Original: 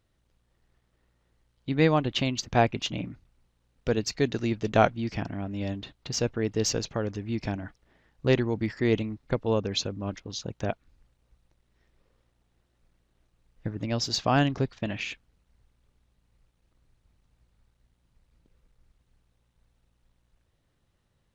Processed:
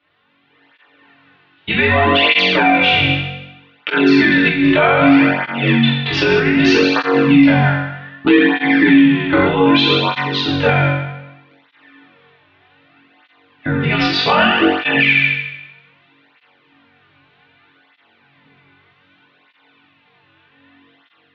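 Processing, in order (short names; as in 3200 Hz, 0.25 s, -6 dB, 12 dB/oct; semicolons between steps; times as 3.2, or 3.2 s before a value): tilt shelf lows -8.5 dB, about 1200 Hz; AGC gain up to 6.5 dB; mistuned SSB -64 Hz 190–3300 Hz; 13.82–15.1 notch comb 540 Hz; flutter echo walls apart 3.7 m, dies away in 0.96 s; FDN reverb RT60 0.4 s, low-frequency decay 1.3×, high-frequency decay 0.45×, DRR -1 dB; maximiser +13.5 dB; tape flanging out of phase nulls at 0.64 Hz, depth 4.5 ms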